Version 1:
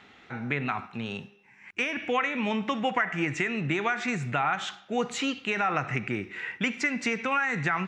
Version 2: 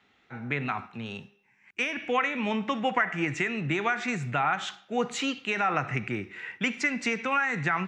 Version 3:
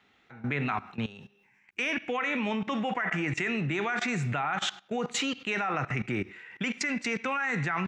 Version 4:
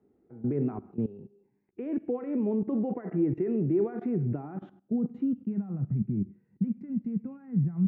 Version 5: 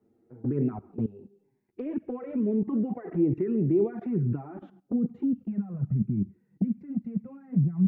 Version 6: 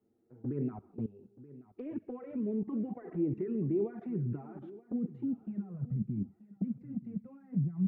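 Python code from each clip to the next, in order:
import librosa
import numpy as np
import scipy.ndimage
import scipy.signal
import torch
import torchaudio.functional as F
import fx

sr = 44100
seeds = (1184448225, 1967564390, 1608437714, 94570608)

y1 = fx.band_widen(x, sr, depth_pct=40)
y2 = fx.level_steps(y1, sr, step_db=18)
y2 = F.gain(torch.from_numpy(y2), 6.5).numpy()
y3 = fx.filter_sweep_lowpass(y2, sr, from_hz=380.0, to_hz=190.0, start_s=4.14, end_s=5.79, q=2.8)
y4 = fx.env_flanger(y3, sr, rest_ms=9.0, full_db=-22.5)
y4 = F.gain(torch.from_numpy(y4), 3.0).numpy()
y5 = fx.echo_feedback(y4, sr, ms=929, feedback_pct=23, wet_db=-17.5)
y5 = F.gain(torch.from_numpy(y5), -7.5).numpy()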